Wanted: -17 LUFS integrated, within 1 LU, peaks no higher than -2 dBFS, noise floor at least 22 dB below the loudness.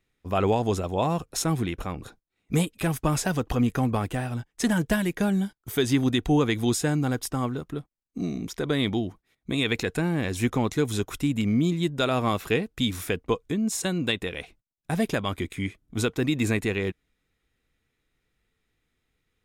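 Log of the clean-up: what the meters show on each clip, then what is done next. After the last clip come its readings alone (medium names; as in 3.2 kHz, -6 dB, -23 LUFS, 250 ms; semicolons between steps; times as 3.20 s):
loudness -26.5 LUFS; peak level -12.0 dBFS; loudness target -17.0 LUFS
-> trim +9.5 dB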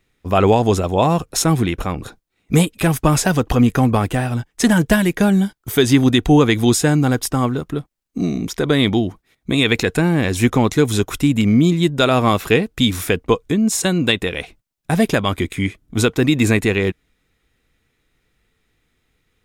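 loudness -17.0 LUFS; peak level -2.5 dBFS; noise floor -69 dBFS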